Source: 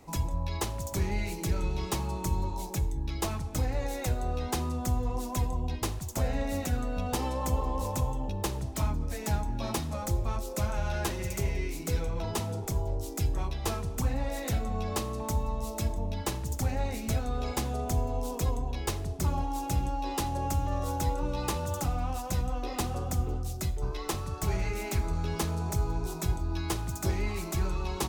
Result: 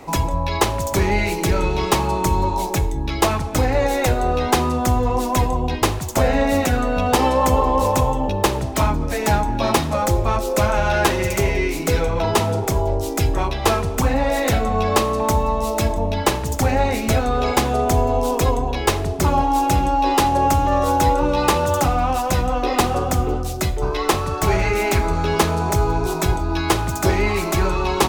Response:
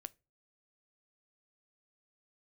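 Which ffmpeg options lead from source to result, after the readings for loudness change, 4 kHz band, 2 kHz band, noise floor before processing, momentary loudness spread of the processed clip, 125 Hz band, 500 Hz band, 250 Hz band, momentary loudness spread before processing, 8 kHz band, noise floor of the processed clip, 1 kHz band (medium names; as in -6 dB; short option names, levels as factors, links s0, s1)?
+12.5 dB, +13.5 dB, +16.5 dB, -38 dBFS, 4 LU, +9.0 dB, +16.5 dB, +13.0 dB, 2 LU, +10.5 dB, -25 dBFS, +17.0 dB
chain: -filter_complex "[0:a]bass=f=250:g=-8,treble=f=4000:g=-7,asplit=2[s0][s1];[1:a]atrim=start_sample=2205[s2];[s1][s2]afir=irnorm=-1:irlink=0,volume=5.96[s3];[s0][s3]amix=inputs=2:normalize=0,volume=1.68"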